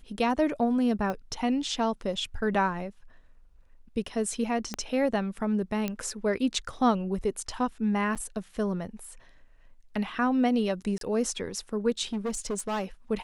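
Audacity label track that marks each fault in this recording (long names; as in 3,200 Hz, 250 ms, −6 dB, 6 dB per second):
1.100000	1.100000	click −20 dBFS
4.740000	4.740000	click −17 dBFS
5.880000	5.880000	click −16 dBFS
8.150000	8.160000	drop-out 7.3 ms
10.980000	11.010000	drop-out 32 ms
12.130000	12.840000	clipping −26.5 dBFS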